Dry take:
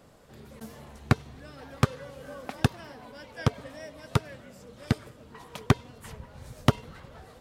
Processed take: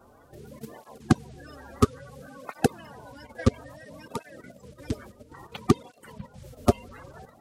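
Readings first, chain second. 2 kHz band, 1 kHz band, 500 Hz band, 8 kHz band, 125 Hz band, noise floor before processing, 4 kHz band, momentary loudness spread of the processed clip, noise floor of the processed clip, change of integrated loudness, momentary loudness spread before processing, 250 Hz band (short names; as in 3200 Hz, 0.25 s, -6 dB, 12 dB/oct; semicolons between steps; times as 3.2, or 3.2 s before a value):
-3.5 dB, +1.5 dB, +5.0 dB, +2.5 dB, -2.5 dB, -53 dBFS, -3.5 dB, 21 LU, -56 dBFS, +1.5 dB, 20 LU, +4.0 dB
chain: bin magnitudes rounded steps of 30 dB; level quantiser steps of 10 dB; tape flanging out of phase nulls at 0.59 Hz, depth 7 ms; gain +7.5 dB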